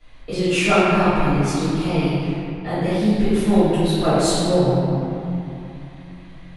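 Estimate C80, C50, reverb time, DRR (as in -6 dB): -2.5 dB, -5.0 dB, 3.0 s, -18.5 dB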